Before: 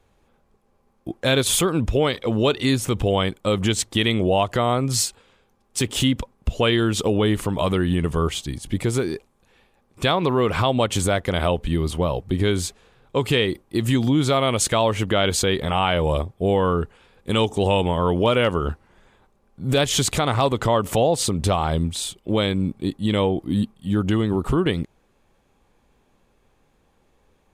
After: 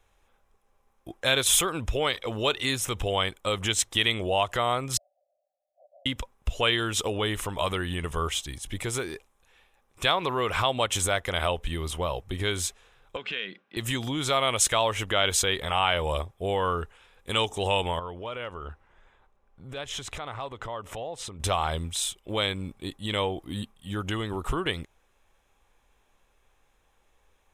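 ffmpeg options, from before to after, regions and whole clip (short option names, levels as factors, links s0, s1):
-filter_complex "[0:a]asettb=1/sr,asplit=3[s0][s1][s2];[s0]atrim=end=4.974[s3];[s1]atrim=start=4.97:end=6.06,asetpts=PTS-STARTPTS,afade=t=in:d=0.004:c=qsin,afade=t=out:st=1.086:d=0.004:c=qsin,asuperpass=centerf=650:order=12:qfactor=3.2,aecho=1:1:1.9:0.47,atrim=end_sample=48069[s4];[s2]atrim=start=6.056[s5];[s3][s4]acrossfade=d=0.004:c1=hsin:c2=qsin[s6];[s6][s5]acrossfade=d=0.004:c1=qsin:c2=hsin,asettb=1/sr,asplit=3[s7][s8][s9];[s7]atrim=end=13.164[s10];[s8]atrim=start=13.16:end=13.77,asetpts=PTS-STARTPTS,afade=t=in:d=0.004:c=qsin,afade=t=out:st=0.606:d=0.004:c=qsin,highpass=f=180:w=0.5412,highpass=f=180:w=1.3066,equalizer=f=190:t=q:w=4:g=10,equalizer=f=350:t=q:w=4:g=-5,equalizer=f=920:t=q:w=4:g=-8,equalizer=f=1500:t=q:w=4:g=10,equalizer=f=2600:t=q:w=4:g=5,lowpass=f=4400:w=0.5412,lowpass=f=4400:w=1.3066,bandreject=f=1300:w=12,acompressor=threshold=0.0316:ratio=2.5:attack=3.2:release=140:knee=1:detection=peak[s11];[s9]atrim=start=13.766[s12];[s10][s11]acrossfade=d=0.004:c1=hsin:c2=qsin[s13];[s13][s12]acrossfade=d=0.004:c1=qsin:c2=hsin,asettb=1/sr,asplit=3[s14][s15][s16];[s14]atrim=end=17.994[s17];[s15]atrim=start=17.99:end=21.4,asetpts=PTS-STARTPTS,afade=t=in:d=0.004:c=qsin,afade=t=out:st=3.406:d=0.004:c=qsin,aemphasis=mode=reproduction:type=75kf,acompressor=threshold=0.0224:ratio=2:attack=3.2:release=140:knee=1:detection=peak[s18];[s16]atrim=start=21.396[s19];[s17][s18]acrossfade=d=0.004:c1=hsin:c2=qsin[s20];[s20][s19]acrossfade=d=0.004:c1=qsin:c2=hsin,equalizer=f=200:t=o:w=2.7:g=-14.5,bandreject=f=4500:w=5.7"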